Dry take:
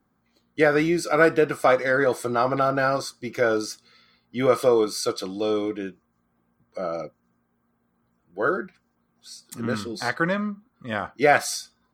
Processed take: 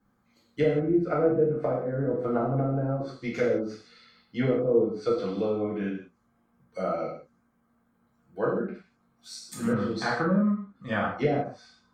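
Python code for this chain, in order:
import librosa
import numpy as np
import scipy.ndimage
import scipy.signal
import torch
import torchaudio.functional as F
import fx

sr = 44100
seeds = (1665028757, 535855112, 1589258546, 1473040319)

y = fx.env_lowpass_down(x, sr, base_hz=360.0, full_db=-18.5)
y = fx.vibrato(y, sr, rate_hz=12.0, depth_cents=10.0)
y = fx.rev_gated(y, sr, seeds[0], gate_ms=210, shape='falling', drr_db=-5.5)
y = y * librosa.db_to_amplitude(-5.0)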